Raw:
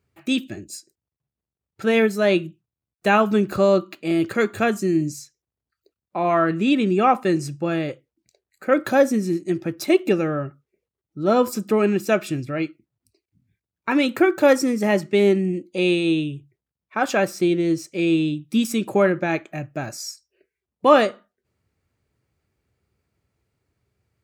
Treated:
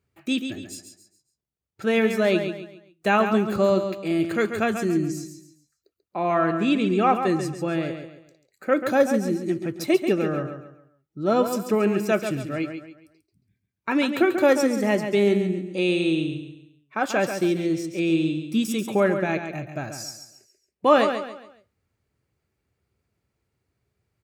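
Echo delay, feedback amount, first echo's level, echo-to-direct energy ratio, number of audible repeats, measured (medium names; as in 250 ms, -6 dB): 138 ms, 35%, -8.0 dB, -7.5 dB, 3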